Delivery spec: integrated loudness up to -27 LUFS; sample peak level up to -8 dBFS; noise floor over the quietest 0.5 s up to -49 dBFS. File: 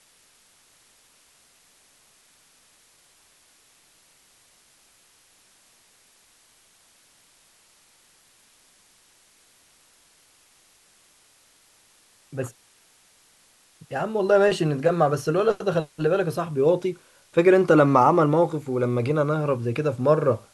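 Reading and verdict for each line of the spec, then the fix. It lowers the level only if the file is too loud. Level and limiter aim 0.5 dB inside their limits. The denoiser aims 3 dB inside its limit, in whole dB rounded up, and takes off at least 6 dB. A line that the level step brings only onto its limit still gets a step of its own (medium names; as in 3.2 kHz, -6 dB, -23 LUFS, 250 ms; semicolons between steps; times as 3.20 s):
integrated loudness -22.0 LUFS: fail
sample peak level -4.0 dBFS: fail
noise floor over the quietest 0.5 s -59 dBFS: pass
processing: trim -5.5 dB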